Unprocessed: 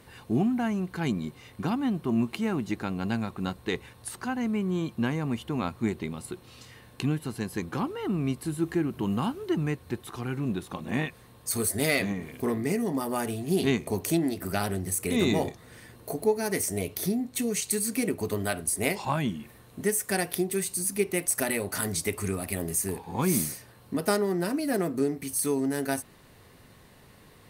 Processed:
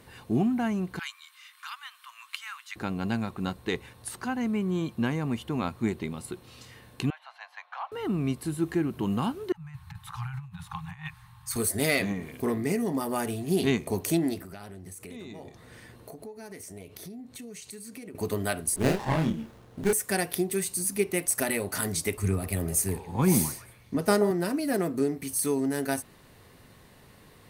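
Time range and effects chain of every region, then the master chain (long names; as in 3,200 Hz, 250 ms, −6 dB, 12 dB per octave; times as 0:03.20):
0:00.99–0:02.76: Butterworth high-pass 1,100 Hz 48 dB per octave + parametric band 3,300 Hz +3 dB 0.44 octaves + upward compression, threshold −51 dBFS
0:07.10–0:07.92: Butterworth high-pass 650 Hz 72 dB per octave + high-frequency loss of the air 270 metres + notch filter 5,000 Hz, Q 11
0:09.52–0:11.56: high-shelf EQ 3,100 Hz −9 dB + compressor whose output falls as the input rises −33 dBFS, ratio −0.5 + Chebyshev band-stop filter 170–810 Hz, order 5
0:14.41–0:18.15: high-shelf EQ 8,800 Hz −7 dB + downward compressor 5 to 1, threshold −41 dBFS
0:18.76–0:19.93: double-tracking delay 31 ms −2.5 dB + windowed peak hold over 17 samples
0:22.17–0:24.31: low-shelf EQ 120 Hz +11.5 dB + echo through a band-pass that steps 130 ms, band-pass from 650 Hz, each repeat 0.7 octaves, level −7 dB + multiband upward and downward expander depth 40%
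whole clip: no processing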